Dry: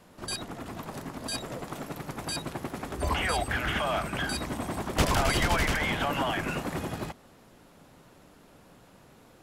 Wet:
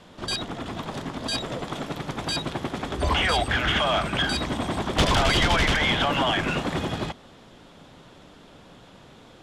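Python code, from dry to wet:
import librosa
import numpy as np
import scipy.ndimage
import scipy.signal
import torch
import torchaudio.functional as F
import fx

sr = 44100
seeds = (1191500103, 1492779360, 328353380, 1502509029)

y = scipy.signal.sosfilt(scipy.signal.butter(2, 6900.0, 'lowpass', fs=sr, output='sos'), x)
y = fx.peak_eq(y, sr, hz=3400.0, db=8.5, octaves=0.35)
y = 10.0 ** (-19.0 / 20.0) * np.tanh(y / 10.0 ** (-19.0 / 20.0))
y = y * 10.0 ** (6.0 / 20.0)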